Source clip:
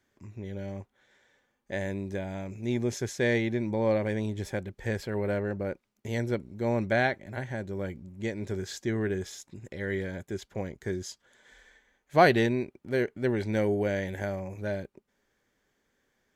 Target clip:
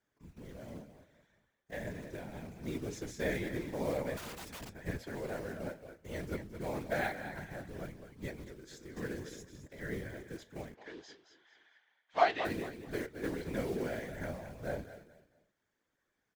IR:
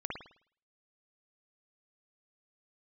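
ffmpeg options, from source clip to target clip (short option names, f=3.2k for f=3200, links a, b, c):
-filter_complex "[0:a]acrusher=bits=4:mode=log:mix=0:aa=0.000001,asplit=2[a][b];[b]aecho=0:1:219|438|657:0.316|0.0949|0.0285[c];[a][c]amix=inputs=2:normalize=0,flanger=delay=8:depth=7.4:regen=63:speed=0.62:shape=triangular,equalizer=f=1.2k:t=o:w=1.2:g=3,asettb=1/sr,asplit=3[d][e][f];[d]atrim=end=4.174[g];[e]atrim=start=4.17:end=4.75,asetpts=PTS-STARTPTS,afade=t=in:d=0.004:c=qsin,afade=t=out:st=0.576:d=0.004:c=qsin,aeval=exprs='(mod(50.1*val(0)+1,2)-1)/50.1':c=same[h];[f]atrim=start=4.746[i];[g][h]acrossfade=d=0.004:c1=hsin:c2=qsin[j];[j][i]acrossfade=d=0.004:c1=qsin:c2=hsin,asettb=1/sr,asplit=3[k][l][m];[k]atrim=end=8.444[n];[l]atrim=start=8.44:end=8.97,asetpts=PTS-STARTPTS,afade=t=in:d=0.004:c=qsin,afade=t=out:st=0.526:d=0.004:c=qsin,acompressor=threshold=-41dB:ratio=10[o];[m]atrim=start=8.966[p];[n][o]acrossfade=d=0.004:c1=hsin:c2=qsin[q];[q][p]acrossfade=d=0.004:c1=qsin:c2=hsin,asplit=3[r][s][t];[r]afade=t=out:st=10.74:d=0.02[u];[s]highpass=480,equalizer=f=510:t=q:w=4:g=-7,equalizer=f=760:t=q:w=4:g=5,equalizer=f=3.1k:t=q:w=4:g=5,lowpass=f=5.1k:w=0.5412,lowpass=f=5.1k:w=1.3066,afade=t=in:st=10.74:d=0.02,afade=t=out:st=12.44:d=0.02[v];[t]afade=t=in:st=12.44:d=0.02[w];[u][v][w]amix=inputs=3:normalize=0,afftfilt=real='hypot(re,im)*cos(2*PI*random(0))':imag='hypot(re,im)*sin(2*PI*random(1))':win_size=512:overlap=0.75"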